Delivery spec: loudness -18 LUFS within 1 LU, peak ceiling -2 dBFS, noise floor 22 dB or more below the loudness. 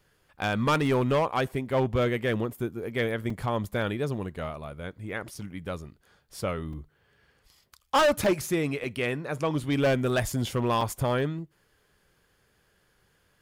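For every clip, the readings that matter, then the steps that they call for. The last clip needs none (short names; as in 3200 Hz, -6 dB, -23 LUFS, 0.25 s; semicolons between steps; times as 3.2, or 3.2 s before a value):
clipped 1.2%; flat tops at -18.5 dBFS; dropouts 6; longest dropout 3.4 ms; loudness -28.0 LUFS; peak -18.5 dBFS; loudness target -18.0 LUFS
-> clip repair -18.5 dBFS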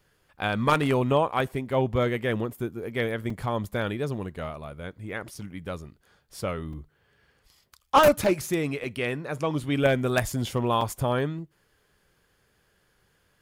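clipped 0.0%; dropouts 6; longest dropout 3.4 ms
-> interpolate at 3.3/5.35/6.73/8.24/8.84/10.81, 3.4 ms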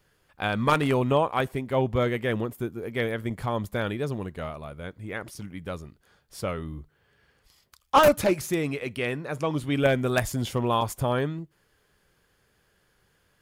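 dropouts 0; loudness -26.5 LUFS; peak -9.5 dBFS; loudness target -18.0 LUFS
-> gain +8.5 dB; limiter -2 dBFS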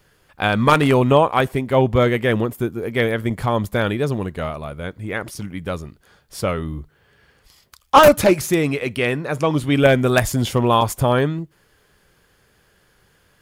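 loudness -18.5 LUFS; peak -2.0 dBFS; noise floor -60 dBFS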